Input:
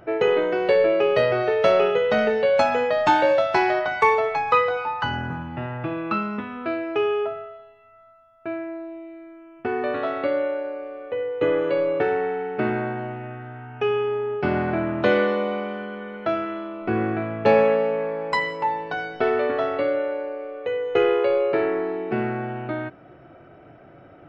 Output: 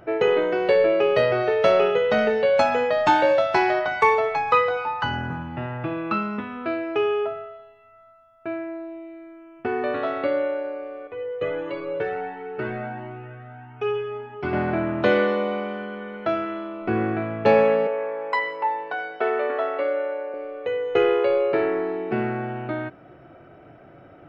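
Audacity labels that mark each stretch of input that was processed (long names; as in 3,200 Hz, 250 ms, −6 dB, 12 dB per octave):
11.070000	14.530000	flanger whose copies keep moving one way rising 1.5 Hz
17.870000	20.340000	three-way crossover with the lows and the highs turned down lows −21 dB, under 340 Hz, highs −13 dB, over 3,200 Hz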